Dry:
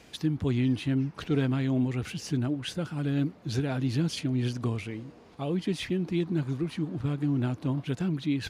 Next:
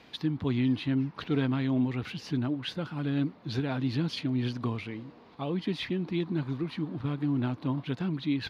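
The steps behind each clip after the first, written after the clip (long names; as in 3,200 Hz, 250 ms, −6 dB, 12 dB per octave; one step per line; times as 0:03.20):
graphic EQ with 10 bands 125 Hz +4 dB, 250 Hz +7 dB, 500 Hz +3 dB, 1,000 Hz +10 dB, 2,000 Hz +5 dB, 4,000 Hz +11 dB, 8,000 Hz −10 dB
level −8.5 dB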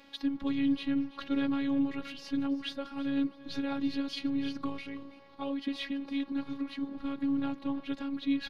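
phases set to zero 277 Hz
repeating echo 330 ms, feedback 26%, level −17 dB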